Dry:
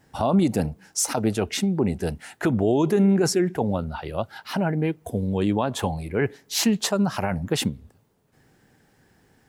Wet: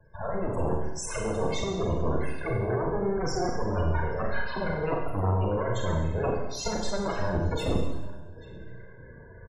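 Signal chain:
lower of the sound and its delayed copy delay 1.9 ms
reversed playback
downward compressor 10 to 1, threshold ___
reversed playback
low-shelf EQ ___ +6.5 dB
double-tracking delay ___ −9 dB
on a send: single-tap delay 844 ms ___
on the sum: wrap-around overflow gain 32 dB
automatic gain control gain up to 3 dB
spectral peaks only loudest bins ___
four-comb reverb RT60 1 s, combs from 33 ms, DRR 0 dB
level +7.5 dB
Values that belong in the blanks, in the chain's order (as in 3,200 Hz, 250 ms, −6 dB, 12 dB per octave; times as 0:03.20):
−39 dBFS, 97 Hz, 33 ms, −19 dB, 32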